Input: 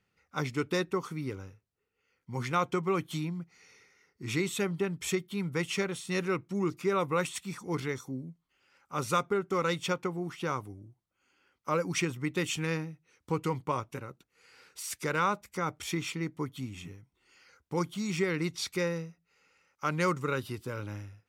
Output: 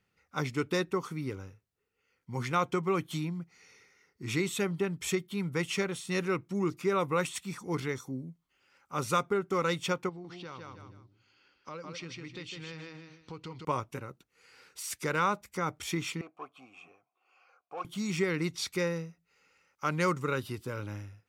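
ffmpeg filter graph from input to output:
ffmpeg -i in.wav -filter_complex "[0:a]asettb=1/sr,asplit=3[link_01][link_02][link_03];[link_01]atrim=end=10.094[link_04];[link_02]atrim=start=10.09:end=13.65,asetpts=PTS-STARTPTS,afade=type=in:duration=0.004:curve=qsin,afade=type=out:start_time=3.556:duration=0.004:curve=qsin,lowpass=frequency=4400:width_type=q:width=3.1,aecho=1:1:154|308|462:0.531|0.117|0.0257,atrim=end_sample=156996,acompressor=threshold=-46dB:ratio=2.5:attack=3.2:release=140:knee=1:detection=peak[link_05];[link_03]atrim=start=13.646[link_06];[link_04][link_05]acrossfade=duration=0.004:curve1=hsin:curve2=qsin[link_07];[link_07][link_06]acrossfade=duration=0.004:curve1=qsin:curve2=hsin,asettb=1/sr,asplit=3[link_08][link_09][link_10];[link_08]atrim=end=16.214[link_11];[link_09]atrim=start=16.21:end=17.85,asetpts=PTS-STARTPTS,afade=type=in:duration=0.004:curve=qsin,afade=type=out:start_time=1.636:duration=0.004:curve=qsin,equalizer=frequency=3500:width=1.1:gain=-9,asplit=2[link_12][link_13];[link_13]highpass=frequency=720:poles=1,volume=21dB,asoftclip=type=tanh:threshold=-18dB[link_14];[link_12][link_14]amix=inputs=2:normalize=0,lowpass=frequency=7800:poles=1,volume=-6dB,asplit=3[link_15][link_16][link_17];[link_15]bandpass=frequency=730:width_type=q:width=8,volume=0dB[link_18];[link_16]bandpass=frequency=1090:width_type=q:width=8,volume=-6dB[link_19];[link_17]bandpass=frequency=2440:width_type=q:width=8,volume=-9dB[link_20];[link_18][link_19][link_20]amix=inputs=3:normalize=0[link_21];[link_10]atrim=start=17.846[link_22];[link_11][link_21]acrossfade=duration=0.004:curve1=hsin:curve2=qsin[link_23];[link_23][link_22]acrossfade=duration=0.004:curve1=qsin:curve2=hsin" out.wav

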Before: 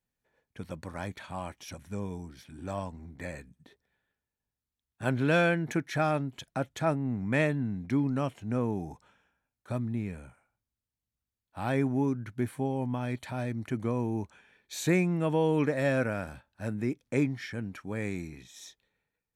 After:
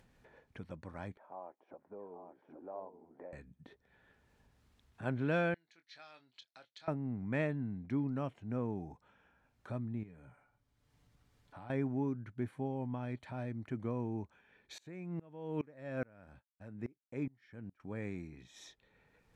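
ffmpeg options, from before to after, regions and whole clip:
ffmpeg -i in.wav -filter_complex "[0:a]asettb=1/sr,asplit=3[link_01][link_02][link_03];[link_01]atrim=end=1.174[link_04];[link_02]atrim=start=1.17:end=3.33,asetpts=PTS-STARTPTS,afade=type=in:duration=0.004:curve=qsin,afade=type=out:start_time=2.156:duration=0.004:curve=qsin,asuperpass=centerf=590:order=4:qfactor=1,aecho=1:1:818:0.355,atrim=end_sample=95256[link_05];[link_03]atrim=start=3.326[link_06];[link_04][link_05]acrossfade=duration=0.004:curve1=hsin:curve2=qsin[link_07];[link_07][link_06]acrossfade=duration=0.004:curve1=qsin:curve2=hsin,asettb=1/sr,asplit=3[link_08][link_09][link_10];[link_08]atrim=end=5.544[link_11];[link_09]atrim=start=5.54:end=6.88,asetpts=PTS-STARTPTS,afade=type=in:duration=0.004:curve=qsin,afade=type=out:start_time=1.336:duration=0.004:curve=qsin,bandpass=frequency=4300:width_type=q:width=4.8,asplit=2[link_12][link_13];[link_13]adelay=24,volume=-10dB[link_14];[link_12][link_14]amix=inputs=2:normalize=0,atrim=end_sample=59094[link_15];[link_10]atrim=start=6.876[link_16];[link_11][link_15]acrossfade=duration=0.004:curve1=hsin:curve2=qsin[link_17];[link_17][link_16]acrossfade=duration=0.004:curve1=qsin:curve2=hsin,asettb=1/sr,asplit=3[link_18][link_19][link_20];[link_18]atrim=end=10.034[link_21];[link_19]atrim=start=10.03:end=11.7,asetpts=PTS-STARTPTS,afade=type=in:duration=0.004:curve=qsin,afade=type=out:start_time=1.666:duration=0.004:curve=qsin,bandreject=frequency=2600:width=26,aecho=1:1:6.9:0.44,atrim=end_sample=73647,acompressor=threshold=-50dB:ratio=2:attack=3.2:release=140:knee=1:detection=peak[link_22];[link_20]atrim=start=11.696[link_23];[link_21][link_22]acrossfade=duration=0.004:curve1=hsin:curve2=qsin[link_24];[link_24][link_23]acrossfade=duration=0.004:curve1=qsin:curve2=hsin,asettb=1/sr,asplit=3[link_25][link_26][link_27];[link_25]atrim=end=14.784[link_28];[link_26]atrim=start=14.78:end=17.8,asetpts=PTS-STARTPTS,afade=type=in:duration=0.004:curve=qsin,afade=type=out:start_time=3.016:duration=0.004:curve=qsin,agate=range=-33dB:threshold=-43dB:ratio=3:release=100:detection=peak,aeval=exprs='val(0)*pow(10,-27*if(lt(mod(-2.4*n/s,1),2*abs(-2.4)/1000),1-mod(-2.4*n/s,1)/(2*abs(-2.4)/1000),(mod(-2.4*n/s,1)-2*abs(-2.4)/1000)/(1-2*abs(-2.4)/1000))/20)':channel_layout=same[link_29];[link_27]atrim=start=17.796[link_30];[link_28][link_29]acrossfade=duration=0.004:curve1=hsin:curve2=qsin[link_31];[link_31][link_30]acrossfade=duration=0.004:curve1=qsin:curve2=hsin,aemphasis=mode=reproduction:type=75fm,acompressor=mode=upward:threshold=-37dB:ratio=2.5,volume=-8dB" out.wav

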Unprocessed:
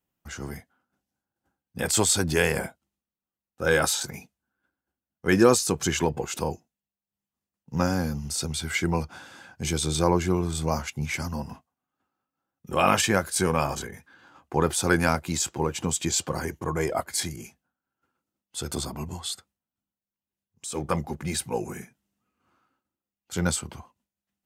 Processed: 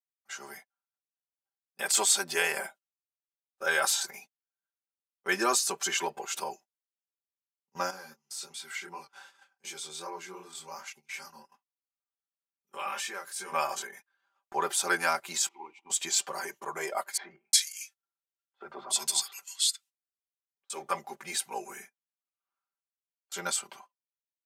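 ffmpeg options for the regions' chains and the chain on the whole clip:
ffmpeg -i in.wav -filter_complex "[0:a]asettb=1/sr,asplit=3[link_01][link_02][link_03];[link_01]atrim=end=7.904[link_04];[link_02]atrim=start=7.9:end=13.52,asetpts=PTS-STARTPTS,afade=type=in:duration=0.004:curve=qsin,afade=type=out:start_time=5.616:duration=0.004:curve=qsin,flanger=delay=20:depth=6.6:speed=2.7,asuperstop=centerf=670:order=4:qfactor=4.9,acompressor=threshold=-42dB:ratio=1.5:attack=3.2:release=140:knee=1:detection=peak[link_05];[link_03]atrim=start=13.516[link_06];[link_04][link_05]acrossfade=duration=0.004:curve1=hsin:curve2=qsin[link_07];[link_07][link_06]acrossfade=duration=0.004:curve1=qsin:curve2=hsin,asettb=1/sr,asplit=3[link_08][link_09][link_10];[link_08]atrim=end=15.484[link_11];[link_09]atrim=start=15.48:end=15.9,asetpts=PTS-STARTPTS,afade=type=in:duration=0.004:curve=qsin,afade=type=out:start_time=0.416:duration=0.004:curve=qsin,aeval=exprs='val(0)+0.5*0.00944*sgn(val(0))':channel_layout=same,asplit=3[link_12][link_13][link_14];[link_12]bandpass=frequency=300:width_type=q:width=8,volume=0dB[link_15];[link_13]bandpass=frequency=870:width_type=q:width=8,volume=-6dB[link_16];[link_14]bandpass=frequency=2240:width_type=q:width=8,volume=-9dB[link_17];[link_15][link_16][link_17]amix=inputs=3:normalize=0[link_18];[link_10]atrim=start=15.896[link_19];[link_11][link_18]acrossfade=duration=0.004:curve1=hsin:curve2=qsin[link_20];[link_20][link_19]acrossfade=duration=0.004:curve1=qsin:curve2=hsin,asettb=1/sr,asplit=3[link_21][link_22][link_23];[link_21]atrim=end=17.174[link_24];[link_22]atrim=start=17.17:end=20.7,asetpts=PTS-STARTPTS,afade=type=in:duration=0.004:curve=qsin,afade=type=out:start_time=3.526:duration=0.004:curve=qsin,equalizer=frequency=6400:width=0.34:gain=9,acrossover=split=190|1700[link_25][link_26][link_27];[link_25]adelay=40[link_28];[link_27]adelay=360[link_29];[link_28][link_26][link_29]amix=inputs=3:normalize=0,atrim=end_sample=155673[link_30];[link_23]atrim=start=20.696[link_31];[link_24][link_30]acrossfade=duration=0.004:curve1=hsin:curve2=qsin[link_32];[link_32][link_31]acrossfade=duration=0.004:curve1=qsin:curve2=hsin,highpass=670,agate=range=-21dB:threshold=-49dB:ratio=16:detection=peak,aecho=1:1:5.1:0.83,volume=-3.5dB" out.wav

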